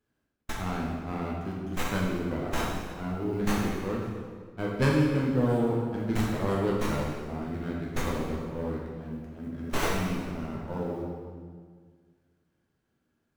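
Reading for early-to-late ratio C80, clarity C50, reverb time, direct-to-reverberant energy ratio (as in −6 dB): 2.5 dB, 0.0 dB, 1.8 s, −4.5 dB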